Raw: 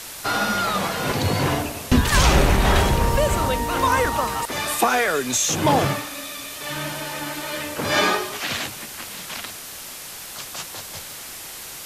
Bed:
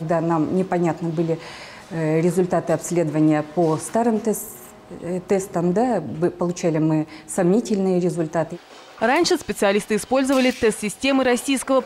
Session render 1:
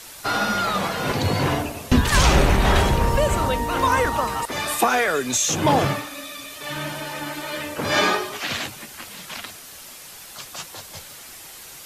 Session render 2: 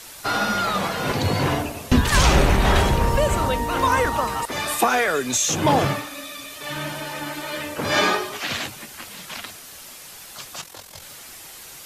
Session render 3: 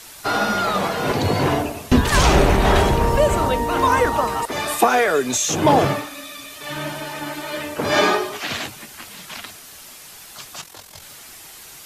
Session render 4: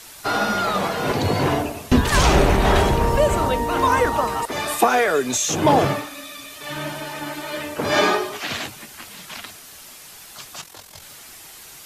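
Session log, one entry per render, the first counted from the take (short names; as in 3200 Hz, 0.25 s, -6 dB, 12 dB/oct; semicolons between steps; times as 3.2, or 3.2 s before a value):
denoiser 6 dB, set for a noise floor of -37 dBFS
10.61–11.02 AM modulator 43 Hz, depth 55%
notch 530 Hz, Q 12; dynamic EQ 490 Hz, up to +6 dB, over -35 dBFS, Q 0.75
gain -1 dB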